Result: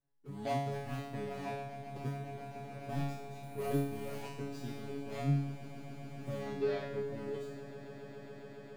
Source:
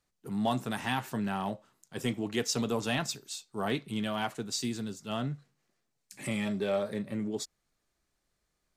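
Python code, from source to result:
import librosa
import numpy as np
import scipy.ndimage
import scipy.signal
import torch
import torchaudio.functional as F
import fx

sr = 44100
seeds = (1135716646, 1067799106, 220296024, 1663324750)

p1 = scipy.ndimage.median_filter(x, 41, mode='constant')
p2 = fx.level_steps(p1, sr, step_db=23, at=(2.08, 2.89))
p3 = fx.lowpass(p2, sr, hz=fx.line((6.37, 7200.0), (7.13, 2800.0)), slope=24, at=(6.37, 7.13), fade=0.02)
p4 = fx.comb_fb(p3, sr, f0_hz=140.0, decay_s=0.8, harmonics='all', damping=0.0, mix_pct=100)
p5 = p4 + fx.echo_swell(p4, sr, ms=137, loudest=8, wet_db=-17.5, dry=0)
p6 = fx.resample_bad(p5, sr, factor=4, down='none', up='hold', at=(3.43, 4.23))
y = p6 * librosa.db_to_amplitude(15.0)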